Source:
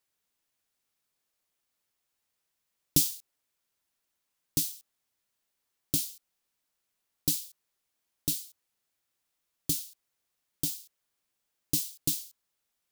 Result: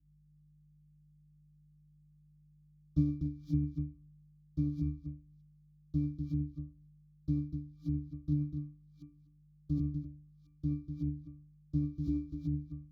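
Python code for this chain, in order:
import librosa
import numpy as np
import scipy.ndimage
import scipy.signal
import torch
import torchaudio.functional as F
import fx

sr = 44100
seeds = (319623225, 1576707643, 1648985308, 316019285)

p1 = fx.reverse_delay(x, sr, ms=361, wet_db=-3.5)
p2 = fx.tilt_eq(p1, sr, slope=-3.0)
p3 = fx.add_hum(p2, sr, base_hz=50, snr_db=14)
p4 = p3 + fx.echo_single(p3, sr, ms=247, db=-13.0, dry=0)
p5 = fx.leveller(p4, sr, passes=1)
p6 = fx.high_shelf(p5, sr, hz=2500.0, db=8.0)
p7 = fx.fixed_phaser(p6, sr, hz=2600.0, stages=6)
p8 = fx.octave_resonator(p7, sr, note='D', decay_s=0.4)
p9 = fx.over_compress(p8, sr, threshold_db=-42.0, ratio=-1.0)
p10 = p8 + (p9 * 10.0 ** (2.0 / 20.0))
y = fx.band_widen(p10, sr, depth_pct=40)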